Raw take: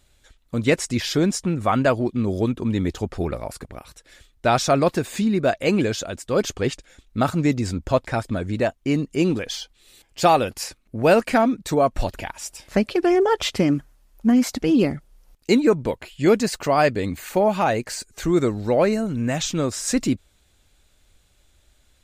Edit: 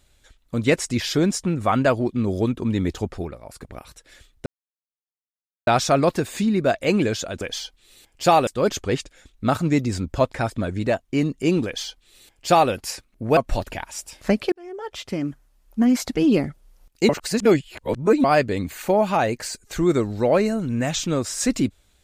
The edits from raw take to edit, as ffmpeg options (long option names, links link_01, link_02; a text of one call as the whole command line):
ffmpeg -i in.wav -filter_complex "[0:a]asplit=10[link_01][link_02][link_03][link_04][link_05][link_06][link_07][link_08][link_09][link_10];[link_01]atrim=end=3.36,asetpts=PTS-STARTPTS,afade=type=out:start_time=3.06:duration=0.3:silence=0.266073[link_11];[link_02]atrim=start=3.36:end=3.43,asetpts=PTS-STARTPTS,volume=-11.5dB[link_12];[link_03]atrim=start=3.43:end=4.46,asetpts=PTS-STARTPTS,afade=type=in:duration=0.3:silence=0.266073,afade=type=out:start_time=1.026:duration=0.004:curve=hsin,apad=pad_dur=1.21[link_13];[link_04]atrim=start=4.46:end=6.202,asetpts=PTS-STARTPTS,afade=type=in:duration=0.004:curve=hsin[link_14];[link_05]atrim=start=9.378:end=10.442[link_15];[link_06]atrim=start=6.198:end=11.102[link_16];[link_07]atrim=start=11.838:end=12.99,asetpts=PTS-STARTPTS,afade=type=out:start_time=1.148:duration=0.004:curve=hsin[link_17];[link_08]atrim=start=12.99:end=15.562,asetpts=PTS-STARTPTS,afade=type=in:duration=1.52[link_18];[link_09]atrim=start=15.558:end=16.712,asetpts=PTS-STARTPTS,areverse[link_19];[link_10]atrim=start=16.708[link_20];[link_11][link_12][link_13][link_14]concat=n=4:v=0:a=1[link_21];[link_21][link_15]acrossfade=duration=0.004:curve1=hsin:curve2=hsin[link_22];[link_22][link_16]acrossfade=duration=0.004:curve1=hsin:curve2=hsin[link_23];[link_17][link_18]concat=n=2:v=0:a=1[link_24];[link_23][link_24]acrossfade=duration=0.004:curve1=hsin:curve2=hsin[link_25];[link_25][link_19]acrossfade=duration=0.004:curve1=hsin:curve2=hsin[link_26];[link_26][link_20]acrossfade=duration=0.004:curve1=hsin:curve2=hsin" out.wav